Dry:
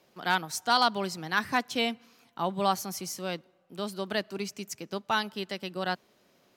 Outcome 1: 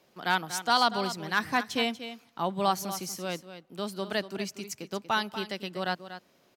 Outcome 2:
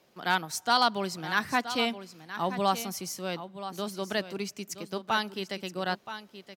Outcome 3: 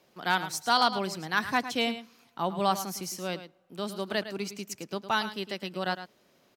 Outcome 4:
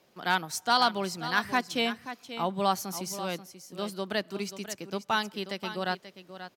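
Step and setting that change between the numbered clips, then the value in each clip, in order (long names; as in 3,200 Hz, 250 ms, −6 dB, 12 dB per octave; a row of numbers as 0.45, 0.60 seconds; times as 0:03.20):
single-tap delay, delay time: 239, 974, 108, 534 milliseconds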